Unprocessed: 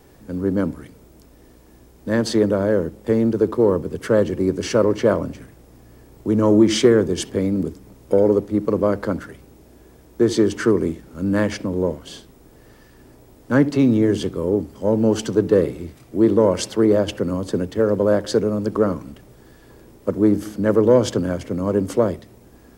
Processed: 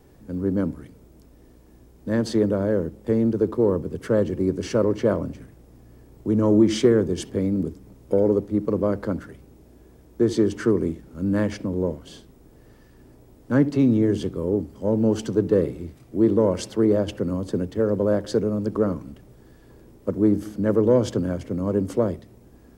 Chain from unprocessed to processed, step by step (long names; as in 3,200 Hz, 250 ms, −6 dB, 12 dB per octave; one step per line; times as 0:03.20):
low-shelf EQ 490 Hz +6.5 dB
level −7.5 dB